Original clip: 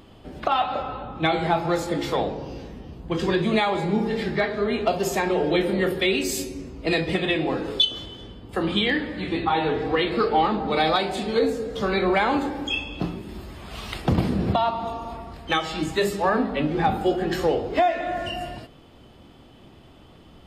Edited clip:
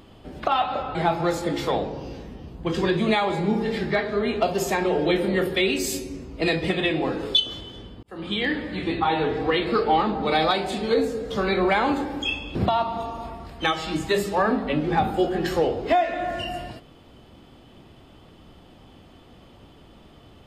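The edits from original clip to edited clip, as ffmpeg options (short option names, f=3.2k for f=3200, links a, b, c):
-filter_complex "[0:a]asplit=4[a][b][c][d];[a]atrim=end=0.952[e];[b]atrim=start=1.398:end=8.48,asetpts=PTS-STARTPTS,afade=t=out:st=7.078:d=0.004:c=hsin[f];[c]atrim=start=8.48:end=13.002,asetpts=PTS-STARTPTS,afade=t=in:d=0.53[g];[d]atrim=start=14.418[h];[f][g]concat=n=2:v=0:a=1[i];[e][i]acrossfade=d=0.004:c1=hsin:c2=hsin[j];[j][h]acrossfade=d=0.004:c1=hsin:c2=hsin"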